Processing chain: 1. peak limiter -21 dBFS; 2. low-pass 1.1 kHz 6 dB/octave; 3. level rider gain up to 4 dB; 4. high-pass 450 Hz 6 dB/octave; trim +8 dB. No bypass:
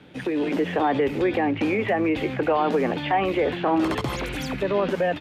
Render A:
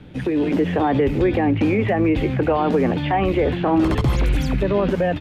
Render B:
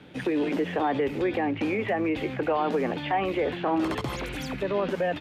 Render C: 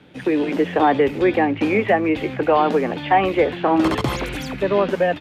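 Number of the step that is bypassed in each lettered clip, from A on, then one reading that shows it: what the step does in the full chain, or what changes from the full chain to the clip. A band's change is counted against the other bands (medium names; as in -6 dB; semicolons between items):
4, 125 Hz band +10.0 dB; 3, momentary loudness spread change -2 LU; 1, mean gain reduction 2.5 dB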